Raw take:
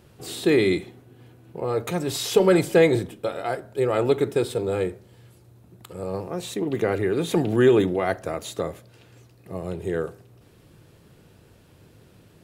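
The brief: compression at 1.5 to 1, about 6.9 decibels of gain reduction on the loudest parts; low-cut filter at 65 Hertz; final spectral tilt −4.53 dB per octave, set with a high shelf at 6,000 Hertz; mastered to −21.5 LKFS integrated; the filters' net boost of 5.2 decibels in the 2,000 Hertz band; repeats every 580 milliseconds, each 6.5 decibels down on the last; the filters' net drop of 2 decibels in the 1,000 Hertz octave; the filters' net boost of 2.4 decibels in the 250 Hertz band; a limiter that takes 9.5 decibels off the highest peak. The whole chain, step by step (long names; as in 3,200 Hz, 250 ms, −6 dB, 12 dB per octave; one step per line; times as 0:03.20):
high-pass filter 65 Hz
parametric band 250 Hz +4 dB
parametric band 1,000 Hz −5.5 dB
parametric band 2,000 Hz +7 dB
high-shelf EQ 6,000 Hz +5.5 dB
downward compressor 1.5 to 1, threshold −30 dBFS
brickwall limiter −20 dBFS
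repeating echo 580 ms, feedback 47%, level −6.5 dB
level +9 dB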